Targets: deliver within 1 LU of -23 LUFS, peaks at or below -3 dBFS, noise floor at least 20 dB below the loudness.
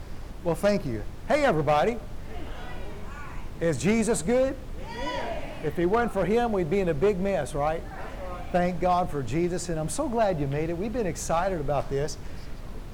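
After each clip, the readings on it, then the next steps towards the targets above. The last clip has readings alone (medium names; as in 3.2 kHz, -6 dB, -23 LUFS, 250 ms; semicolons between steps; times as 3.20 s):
clipped samples 0.9%; clipping level -16.5 dBFS; noise floor -38 dBFS; noise floor target -47 dBFS; loudness -27.0 LUFS; peak level -16.5 dBFS; loudness target -23.0 LUFS
-> clip repair -16.5 dBFS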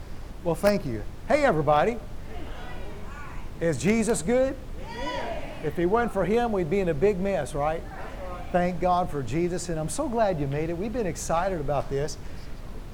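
clipped samples 0.0%; noise floor -38 dBFS; noise floor target -47 dBFS
-> noise print and reduce 9 dB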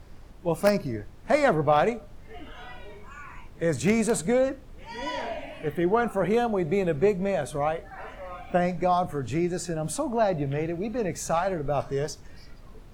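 noise floor -46 dBFS; noise floor target -47 dBFS
-> noise print and reduce 6 dB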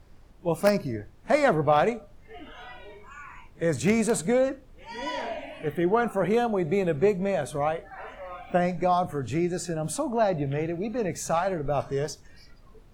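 noise floor -52 dBFS; loudness -26.5 LUFS; peak level -8.5 dBFS; loudness target -23.0 LUFS
-> trim +3.5 dB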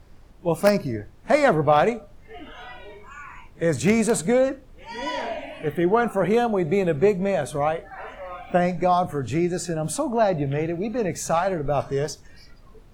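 loudness -23.0 LUFS; peak level -5.0 dBFS; noise floor -49 dBFS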